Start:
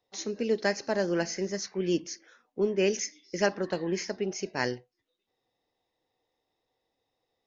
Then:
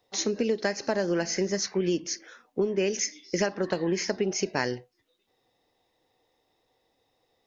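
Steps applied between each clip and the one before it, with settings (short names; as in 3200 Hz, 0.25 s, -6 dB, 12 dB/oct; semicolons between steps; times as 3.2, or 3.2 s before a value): compressor 10:1, threshold -31 dBFS, peak gain reduction 12.5 dB; gain +8.5 dB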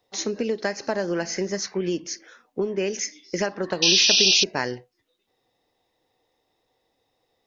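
dynamic EQ 1100 Hz, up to +3 dB, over -39 dBFS, Q 0.86; painted sound noise, 3.82–4.44, 2400–6100 Hz -18 dBFS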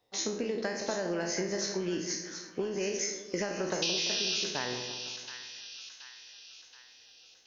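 spectral trails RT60 0.51 s; compressor, threshold -24 dBFS, peak gain reduction 11.5 dB; split-band echo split 1200 Hz, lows 0.17 s, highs 0.726 s, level -8.5 dB; gain -5 dB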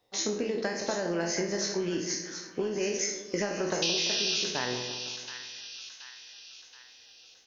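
doubler 24 ms -11 dB; gain +2 dB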